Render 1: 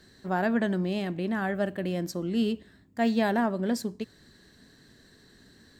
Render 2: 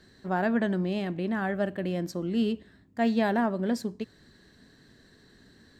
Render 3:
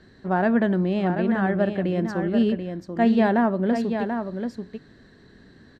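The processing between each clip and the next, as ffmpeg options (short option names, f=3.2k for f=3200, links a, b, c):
-af "highshelf=f=5.9k:g=-7.5"
-af "aemphasis=mode=reproduction:type=75fm,aecho=1:1:736:0.447,volume=5dB"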